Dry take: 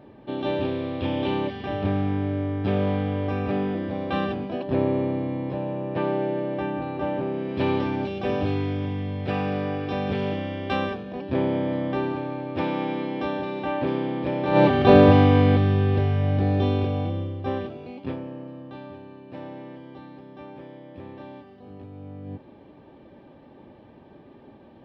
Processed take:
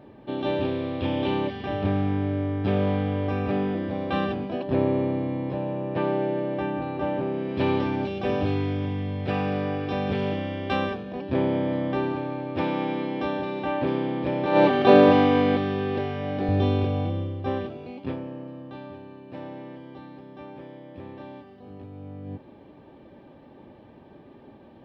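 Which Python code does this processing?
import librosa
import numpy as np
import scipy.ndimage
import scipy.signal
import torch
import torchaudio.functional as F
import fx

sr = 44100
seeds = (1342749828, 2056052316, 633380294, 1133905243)

y = fx.highpass(x, sr, hz=220.0, slope=12, at=(14.46, 16.49))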